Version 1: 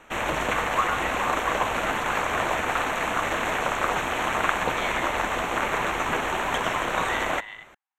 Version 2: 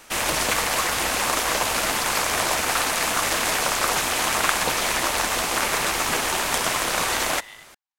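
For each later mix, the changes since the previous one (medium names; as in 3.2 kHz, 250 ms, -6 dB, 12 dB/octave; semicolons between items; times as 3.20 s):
speech -7.0 dB; master: remove boxcar filter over 9 samples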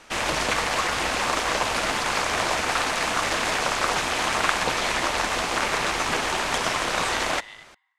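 background: add distance through air 71 m; reverb: on, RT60 1.7 s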